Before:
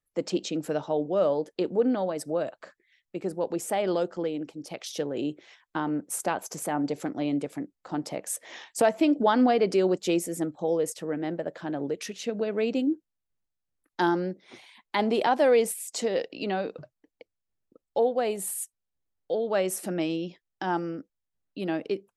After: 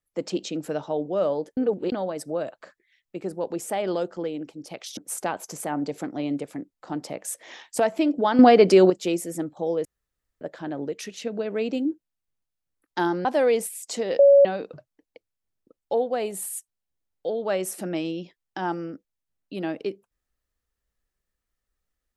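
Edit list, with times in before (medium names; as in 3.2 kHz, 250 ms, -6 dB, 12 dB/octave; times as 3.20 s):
1.57–1.92 s: reverse
4.97–5.99 s: delete
9.41–9.92 s: gain +8.5 dB
10.87–11.43 s: room tone
14.27–15.30 s: delete
16.24–16.50 s: bleep 561 Hz -10 dBFS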